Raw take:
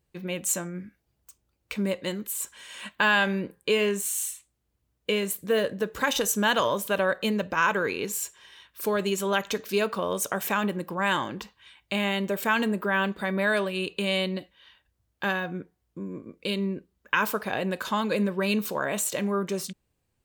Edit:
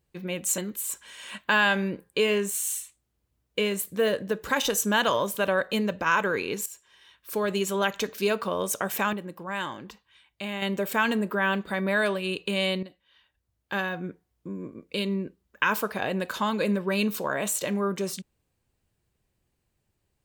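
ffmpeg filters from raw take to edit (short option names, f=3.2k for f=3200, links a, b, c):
-filter_complex "[0:a]asplit=6[a][b][c][d][e][f];[a]atrim=end=0.582[g];[b]atrim=start=2.088:end=8.17,asetpts=PTS-STARTPTS,afade=t=out:st=6.078:d=0.004:c=hsin:silence=0.223872[h];[c]atrim=start=8.17:end=10.642,asetpts=PTS-STARTPTS,afade=t=in:d=0.9:silence=0.223872[i];[d]atrim=start=10.638:end=12.132,asetpts=PTS-STARTPTS,volume=-6.5dB[j];[e]atrim=start=12.128:end=14.34,asetpts=PTS-STARTPTS,afade=t=out:st=2.208:d=0.004:c=hsin:silence=0.237137[k];[f]atrim=start=14.34,asetpts=PTS-STARTPTS,afade=t=in:d=1.23:silence=0.237137[l];[h][i]concat=n=2:v=0:a=1[m];[g][m]acrossfade=d=0.004:c1=hsin:c2=hsin[n];[n][j]acrossfade=d=0.004:c1=hsin:c2=hsin[o];[k][l]concat=n=2:v=0:a=1[p];[o][p]acrossfade=d=0.004:c1=hsin:c2=hsin"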